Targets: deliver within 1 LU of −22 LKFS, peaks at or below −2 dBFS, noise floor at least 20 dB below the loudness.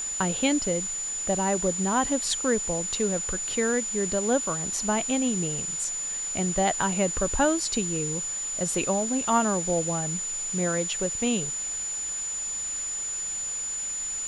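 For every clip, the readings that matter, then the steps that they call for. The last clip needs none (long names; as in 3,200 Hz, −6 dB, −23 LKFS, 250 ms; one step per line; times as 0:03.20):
interfering tone 7,000 Hz; level of the tone −29 dBFS; background noise floor −32 dBFS; target noise floor −46 dBFS; integrated loudness −26.0 LKFS; sample peak −11.0 dBFS; target loudness −22.0 LKFS
→ notch filter 7,000 Hz, Q 30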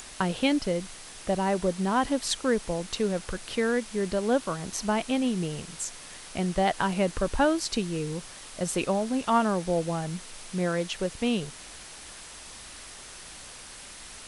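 interfering tone none found; background noise floor −45 dBFS; target noise floor −49 dBFS
→ noise reduction from a noise print 6 dB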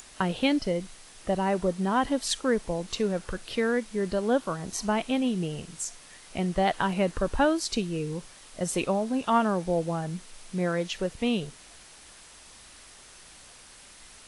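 background noise floor −51 dBFS; integrated loudness −28.5 LKFS; sample peak −12.0 dBFS; target loudness −22.0 LKFS
→ level +6.5 dB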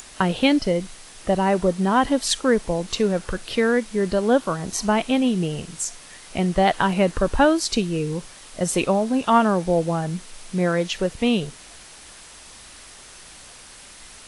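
integrated loudness −22.0 LKFS; sample peak −5.5 dBFS; background noise floor −44 dBFS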